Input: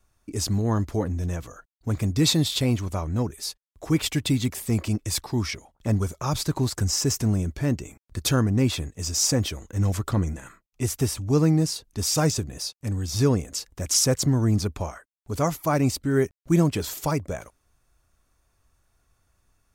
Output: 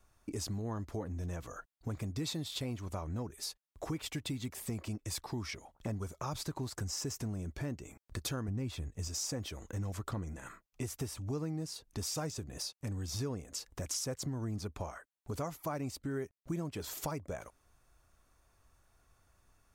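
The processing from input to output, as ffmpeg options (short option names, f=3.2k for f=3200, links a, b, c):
-filter_complex "[0:a]asettb=1/sr,asplit=3[a][b][c];[a]atrim=end=8.484[d];[b]atrim=start=8.48:end=9.08,asetpts=PTS-STARTPTS,afade=t=in:d=0.004:c=qsin,afade=t=out:st=0.596:d=0.004:c=qsin,lowshelf=f=110:g=12[e];[c]atrim=start=9.076[f];[d][e]acrossfade=d=0.004:c1=hsin:c2=qsin[g];[g][f]acrossfade=d=0.004:c1=qsin:c2=hsin,equalizer=f=850:w=0.53:g=3.5,acompressor=threshold=-36dB:ratio=4,volume=-2dB"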